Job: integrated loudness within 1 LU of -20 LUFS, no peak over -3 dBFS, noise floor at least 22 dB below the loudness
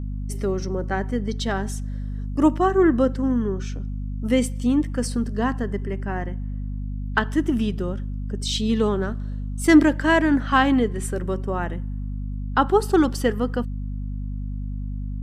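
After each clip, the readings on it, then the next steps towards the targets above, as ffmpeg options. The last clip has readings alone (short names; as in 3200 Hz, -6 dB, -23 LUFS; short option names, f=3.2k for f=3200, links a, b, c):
hum 50 Hz; harmonics up to 250 Hz; hum level -26 dBFS; loudness -23.5 LUFS; peak -4.0 dBFS; loudness target -20.0 LUFS
-> -af "bandreject=f=50:t=h:w=6,bandreject=f=100:t=h:w=6,bandreject=f=150:t=h:w=6,bandreject=f=200:t=h:w=6,bandreject=f=250:t=h:w=6"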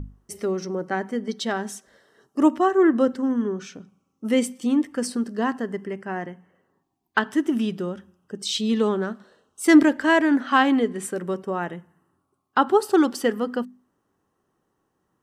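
hum none; loudness -23.0 LUFS; peak -5.0 dBFS; loudness target -20.0 LUFS
-> -af "volume=3dB,alimiter=limit=-3dB:level=0:latency=1"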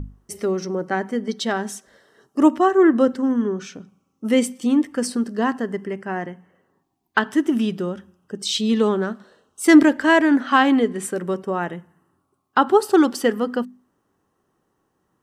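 loudness -20.0 LUFS; peak -3.0 dBFS; noise floor -72 dBFS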